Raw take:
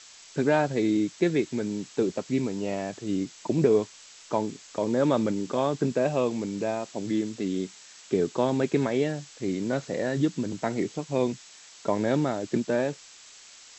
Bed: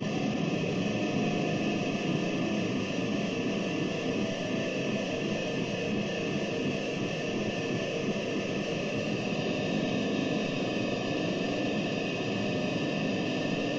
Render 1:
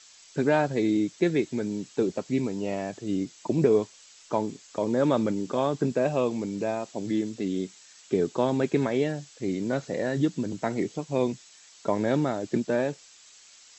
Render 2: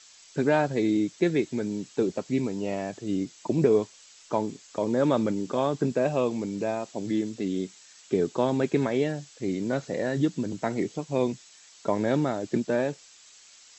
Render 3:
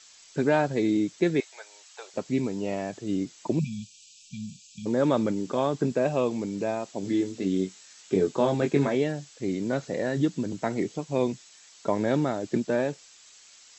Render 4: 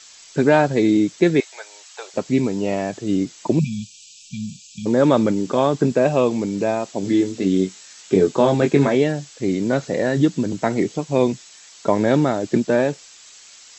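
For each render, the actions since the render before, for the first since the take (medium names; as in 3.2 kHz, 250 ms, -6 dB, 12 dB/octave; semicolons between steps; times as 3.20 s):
noise reduction 6 dB, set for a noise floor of -50 dBFS
no audible change
1.40–2.14 s: steep high-pass 660 Hz; 3.59–4.86 s: brick-wall FIR band-stop 230–2300 Hz; 7.01–8.95 s: doubling 21 ms -5 dB
trim +8 dB; peak limiter -3 dBFS, peak gain reduction 1.5 dB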